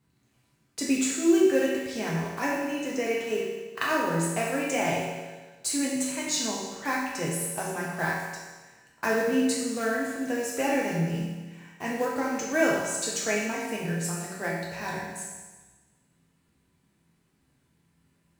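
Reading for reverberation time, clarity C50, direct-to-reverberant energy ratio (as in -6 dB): 1.3 s, 0.5 dB, -5.0 dB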